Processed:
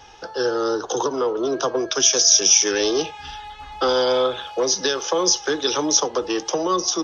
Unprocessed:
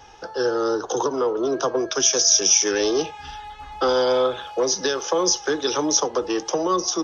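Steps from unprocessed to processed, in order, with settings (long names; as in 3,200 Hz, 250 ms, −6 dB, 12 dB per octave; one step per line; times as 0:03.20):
parametric band 3,500 Hz +4.5 dB 1.4 octaves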